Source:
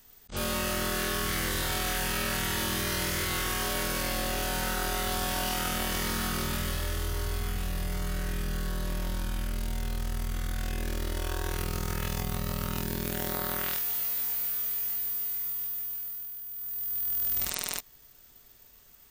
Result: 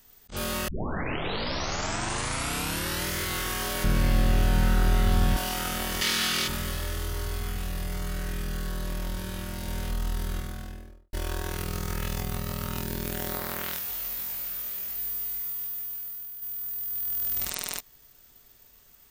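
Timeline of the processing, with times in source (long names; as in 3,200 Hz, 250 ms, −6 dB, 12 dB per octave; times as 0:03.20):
0:00.68: tape start 2.40 s
0:03.84–0:05.37: bass and treble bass +15 dB, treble −6 dB
0:06.01–0:06.48: meter weighting curve D
0:08.67–0:09.40: delay throw 500 ms, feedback 80%, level −4.5 dB
0:10.26–0:11.13: fade out and dull
0:13.39–0:14.98: highs frequency-modulated by the lows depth 0.36 ms
0:16.42–0:16.89: envelope flattener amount 70%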